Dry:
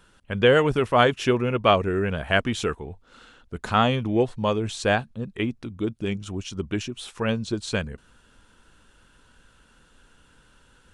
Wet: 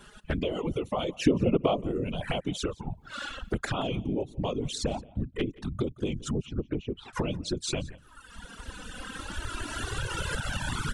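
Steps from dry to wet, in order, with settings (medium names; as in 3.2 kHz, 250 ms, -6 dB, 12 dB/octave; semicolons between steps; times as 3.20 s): recorder AGC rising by 9.2 dB/s; whisper effect; in parallel at 0 dB: peak limiter -13.5 dBFS, peak gain reduction 11 dB; on the sum: touch-sensitive flanger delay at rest 5.1 ms, full sweep at -14.5 dBFS; reverb removal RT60 1 s; 4.78–5.46 s: tilt shelf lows +4.5 dB, about 710 Hz; compression 10:1, threshold -31 dBFS, peak gain reduction 21 dB; 1.14–1.77 s: peaking EQ 260 Hz +9.5 dB 2.5 oct; 6.32–7.13 s: low-pass 1.5 kHz 12 dB/octave; on a send: delay 174 ms -22 dB; on the sum: trim +3.5 dB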